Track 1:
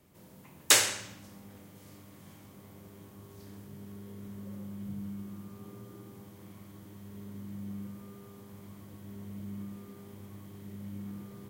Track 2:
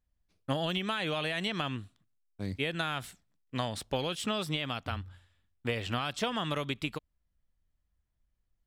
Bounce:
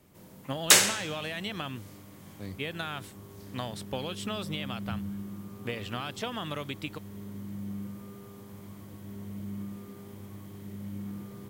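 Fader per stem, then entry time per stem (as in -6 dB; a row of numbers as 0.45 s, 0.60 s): +3.0 dB, -3.0 dB; 0.00 s, 0.00 s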